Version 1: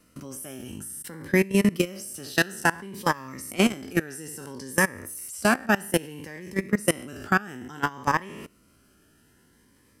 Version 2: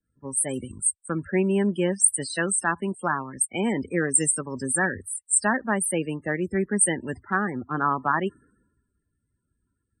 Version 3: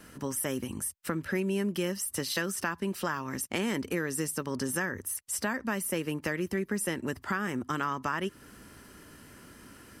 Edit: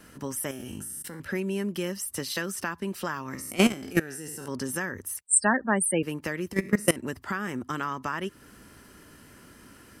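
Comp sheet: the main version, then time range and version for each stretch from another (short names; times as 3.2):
3
0.51–1.2 from 1
3.35–4.48 from 1
5.22–6.03 from 2
6.53–6.96 from 1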